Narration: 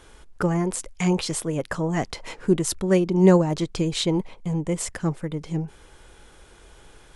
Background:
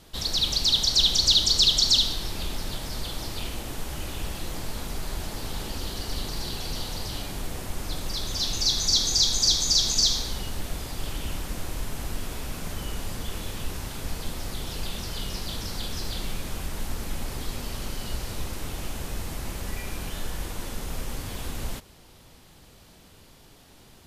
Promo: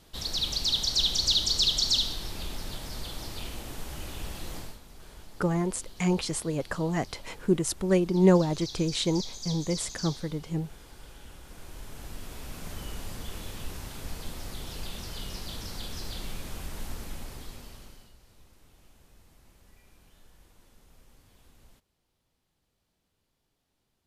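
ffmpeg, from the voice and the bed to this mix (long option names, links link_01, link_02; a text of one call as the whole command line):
ffmpeg -i stem1.wav -i stem2.wav -filter_complex "[0:a]adelay=5000,volume=-4dB[link_01];[1:a]volume=7dB,afade=type=out:start_time=4.57:duration=0.22:silence=0.237137,afade=type=in:start_time=11.4:duration=1.34:silence=0.251189,afade=type=out:start_time=16.88:duration=1.25:silence=0.1[link_02];[link_01][link_02]amix=inputs=2:normalize=0" out.wav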